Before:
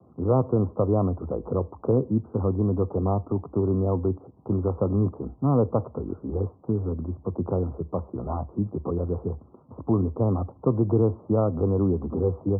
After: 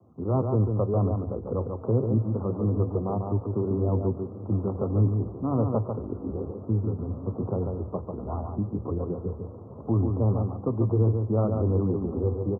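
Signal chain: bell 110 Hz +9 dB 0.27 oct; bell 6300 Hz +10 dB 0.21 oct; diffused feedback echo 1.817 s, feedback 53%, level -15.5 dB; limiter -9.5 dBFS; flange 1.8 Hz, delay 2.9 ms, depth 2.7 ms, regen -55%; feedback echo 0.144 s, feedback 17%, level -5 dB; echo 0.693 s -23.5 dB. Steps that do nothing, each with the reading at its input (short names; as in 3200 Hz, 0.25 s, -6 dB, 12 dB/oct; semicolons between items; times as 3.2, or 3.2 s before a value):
bell 6300 Hz: input band ends at 810 Hz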